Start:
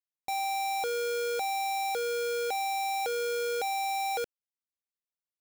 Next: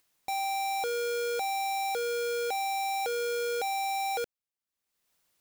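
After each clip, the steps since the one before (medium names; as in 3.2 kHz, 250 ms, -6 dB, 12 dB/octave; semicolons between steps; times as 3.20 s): upward compressor, threshold -55 dBFS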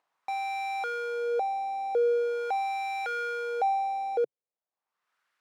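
peaking EQ 140 Hz +5.5 dB 0.55 oct; wah-wah 0.42 Hz 430–1500 Hz, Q 2.2; trim +8.5 dB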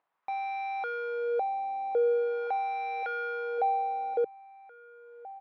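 distance through air 300 m; echo from a far wall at 280 m, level -15 dB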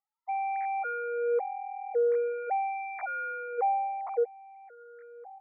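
formants replaced by sine waves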